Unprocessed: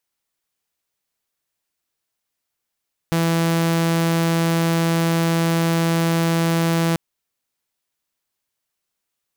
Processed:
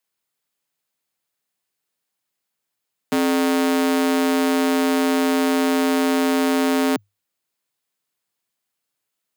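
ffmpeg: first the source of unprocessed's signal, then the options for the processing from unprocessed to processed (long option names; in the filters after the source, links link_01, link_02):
-f lavfi -i "aevalsrc='0.2*(2*mod(166*t,1)-1)':duration=3.84:sample_rate=44100"
-af "bandreject=frequency=5700:width=16,afreqshift=100"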